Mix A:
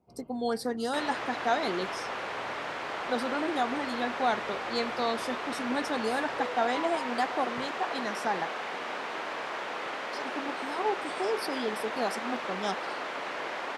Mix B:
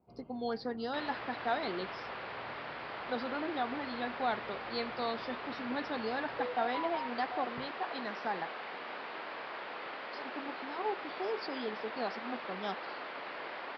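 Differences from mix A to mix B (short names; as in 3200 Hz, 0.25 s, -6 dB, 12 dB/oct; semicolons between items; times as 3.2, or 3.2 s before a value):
speech -5.0 dB; second sound -6.5 dB; master: add elliptic low-pass 4800 Hz, stop band 40 dB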